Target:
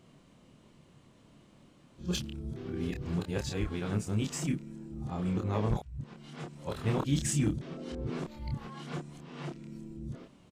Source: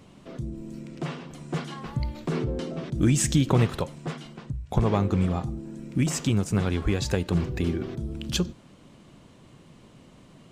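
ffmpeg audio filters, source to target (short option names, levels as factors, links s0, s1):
-filter_complex "[0:a]areverse,asoftclip=type=hard:threshold=0.224,asplit=2[s0][s1];[s1]adelay=28,volume=0.631[s2];[s0][s2]amix=inputs=2:normalize=0,volume=0.355"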